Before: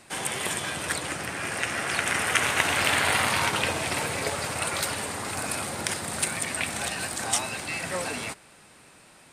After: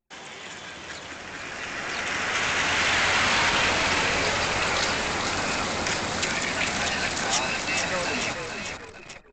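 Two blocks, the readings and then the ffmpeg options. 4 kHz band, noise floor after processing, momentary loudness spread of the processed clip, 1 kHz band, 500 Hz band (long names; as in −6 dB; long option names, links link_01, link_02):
+3.5 dB, −43 dBFS, 17 LU, +2.5 dB, +2.0 dB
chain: -filter_complex "[0:a]equalizer=frequency=120:width=3.8:gain=-12,acrossover=split=220|1100[link_01][link_02][link_03];[link_02]asoftclip=type=tanh:threshold=-32dB[link_04];[link_01][link_04][link_03]amix=inputs=3:normalize=0,asplit=8[link_05][link_06][link_07][link_08][link_09][link_10][link_11][link_12];[link_06]adelay=441,afreqshift=-42,volume=-7dB[link_13];[link_07]adelay=882,afreqshift=-84,volume=-11.9dB[link_14];[link_08]adelay=1323,afreqshift=-126,volume=-16.8dB[link_15];[link_09]adelay=1764,afreqshift=-168,volume=-21.6dB[link_16];[link_10]adelay=2205,afreqshift=-210,volume=-26.5dB[link_17];[link_11]adelay=2646,afreqshift=-252,volume=-31.4dB[link_18];[link_12]adelay=3087,afreqshift=-294,volume=-36.3dB[link_19];[link_05][link_13][link_14][link_15][link_16][link_17][link_18][link_19]amix=inputs=8:normalize=0,anlmdn=0.398,bandreject=frequency=154.7:width_type=h:width=4,bandreject=frequency=309.4:width_type=h:width=4,bandreject=frequency=464.1:width_type=h:width=4,bandreject=frequency=618.8:width_type=h:width=4,bandreject=frequency=773.5:width_type=h:width=4,bandreject=frequency=928.2:width_type=h:width=4,bandreject=frequency=1082.9:width_type=h:width=4,bandreject=frequency=1237.6:width_type=h:width=4,bandreject=frequency=1392.3:width_type=h:width=4,bandreject=frequency=1547:width_type=h:width=4,bandreject=frequency=1701.7:width_type=h:width=4,bandreject=frequency=1856.4:width_type=h:width=4,bandreject=frequency=2011.1:width_type=h:width=4,aresample=16000,asoftclip=type=hard:threshold=-23dB,aresample=44100,dynaudnorm=framelen=270:gausssize=17:maxgain=13dB,volume=-7.5dB"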